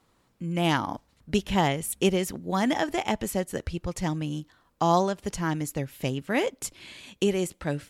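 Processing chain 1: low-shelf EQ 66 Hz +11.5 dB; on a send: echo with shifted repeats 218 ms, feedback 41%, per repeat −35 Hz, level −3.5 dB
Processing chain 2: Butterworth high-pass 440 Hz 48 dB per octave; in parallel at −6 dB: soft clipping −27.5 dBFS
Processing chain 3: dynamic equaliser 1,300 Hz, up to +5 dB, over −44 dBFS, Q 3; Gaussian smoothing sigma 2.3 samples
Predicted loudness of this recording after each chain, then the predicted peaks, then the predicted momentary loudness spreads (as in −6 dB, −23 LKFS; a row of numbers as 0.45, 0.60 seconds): −26.0, −29.0, −28.0 LKFS; −7.5, −10.5, −10.0 dBFS; 7, 11, 10 LU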